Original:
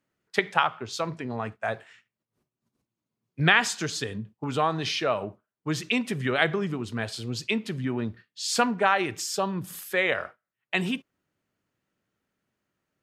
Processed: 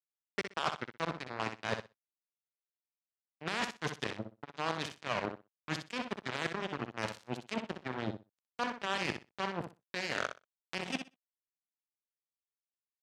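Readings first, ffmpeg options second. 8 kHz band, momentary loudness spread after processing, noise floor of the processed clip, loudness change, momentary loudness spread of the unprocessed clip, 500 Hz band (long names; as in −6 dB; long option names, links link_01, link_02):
−15.0 dB, 8 LU, below −85 dBFS, −11.0 dB, 11 LU, −10.5 dB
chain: -filter_complex "[0:a]deesser=0.9,equalizer=frequency=1000:width=5.4:gain=6,areverse,acompressor=threshold=-35dB:ratio=8,areverse,acrusher=bits=4:mix=0:aa=0.5,asoftclip=type=tanh:threshold=-28dB,highpass=100,lowpass=6900,asplit=2[link_01][link_02];[link_02]aecho=0:1:62|124|186:0.398|0.0637|0.0102[link_03];[link_01][link_03]amix=inputs=2:normalize=0,volume=8dB"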